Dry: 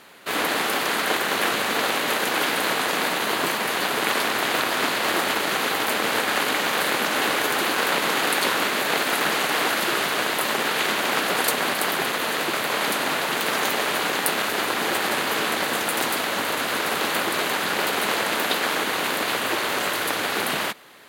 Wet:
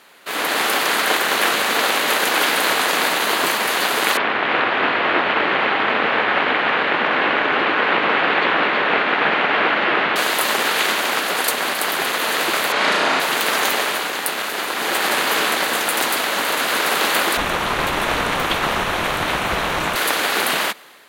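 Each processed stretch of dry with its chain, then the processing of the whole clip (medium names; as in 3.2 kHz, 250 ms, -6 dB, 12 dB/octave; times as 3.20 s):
4.17–10.16 s: low-pass 2.9 kHz 24 dB/octave + bass shelf 130 Hz +7.5 dB + delay 320 ms -4.5 dB
12.72–13.20 s: distance through air 88 m + flutter echo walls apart 6 m, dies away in 0.66 s
17.37–19.96 s: treble shelf 5.4 kHz -11.5 dB + frequency shift -410 Hz
whole clip: peaking EQ 120 Hz -3.5 dB 0.38 oct; level rider gain up to 7 dB; bass shelf 300 Hz -8 dB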